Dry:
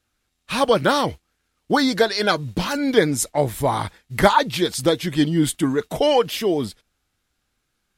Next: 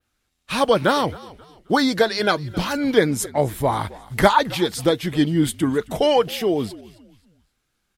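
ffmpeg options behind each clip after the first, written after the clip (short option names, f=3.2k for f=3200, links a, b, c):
-filter_complex "[0:a]asplit=4[a][b][c][d];[b]adelay=266,afreqshift=-59,volume=-20.5dB[e];[c]adelay=532,afreqshift=-118,volume=-29.6dB[f];[d]adelay=798,afreqshift=-177,volume=-38.7dB[g];[a][e][f][g]amix=inputs=4:normalize=0,adynamicequalizer=threshold=0.00891:dfrequency=6800:dqfactor=0.72:tfrequency=6800:tqfactor=0.72:attack=5:release=100:ratio=0.375:range=2.5:mode=cutabove:tftype=bell"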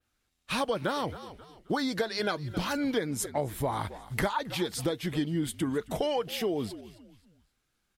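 -af "acompressor=threshold=-22dB:ratio=5,volume=-4.5dB"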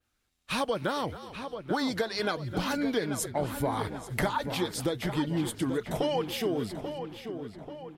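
-filter_complex "[0:a]asplit=2[a][b];[b]adelay=837,lowpass=f=3.1k:p=1,volume=-8.5dB,asplit=2[c][d];[d]adelay=837,lowpass=f=3.1k:p=1,volume=0.52,asplit=2[e][f];[f]adelay=837,lowpass=f=3.1k:p=1,volume=0.52,asplit=2[g][h];[h]adelay=837,lowpass=f=3.1k:p=1,volume=0.52,asplit=2[i][j];[j]adelay=837,lowpass=f=3.1k:p=1,volume=0.52,asplit=2[k][l];[l]adelay=837,lowpass=f=3.1k:p=1,volume=0.52[m];[a][c][e][g][i][k][m]amix=inputs=7:normalize=0"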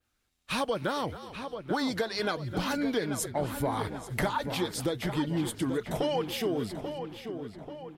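-af "asoftclip=type=tanh:threshold=-15.5dB"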